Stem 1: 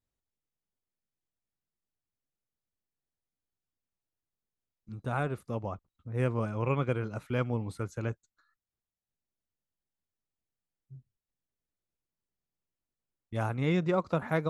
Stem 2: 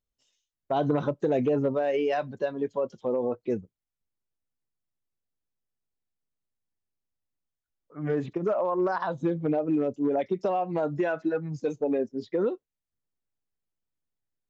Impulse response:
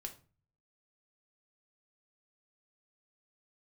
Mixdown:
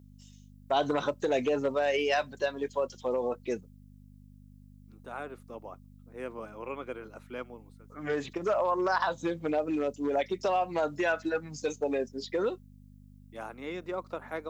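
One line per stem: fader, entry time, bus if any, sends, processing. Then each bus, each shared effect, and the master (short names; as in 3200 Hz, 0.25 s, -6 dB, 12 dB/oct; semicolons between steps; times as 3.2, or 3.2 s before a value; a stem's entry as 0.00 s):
-6.0 dB, 0.00 s, no send, HPF 260 Hz 24 dB/oct; auto duck -21 dB, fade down 0.55 s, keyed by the second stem
+2.0 dB, 0.00 s, no send, tilt +4 dB/oct; hum 50 Hz, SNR 15 dB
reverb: off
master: HPF 130 Hz 6 dB/oct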